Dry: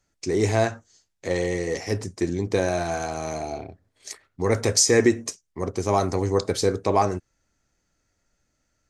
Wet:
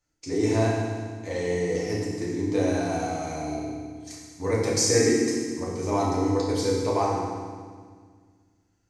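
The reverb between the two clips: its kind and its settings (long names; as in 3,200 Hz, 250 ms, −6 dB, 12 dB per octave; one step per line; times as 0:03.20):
feedback delay network reverb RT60 1.7 s, low-frequency decay 1.45×, high-frequency decay 0.95×, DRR −5.5 dB
level −9.5 dB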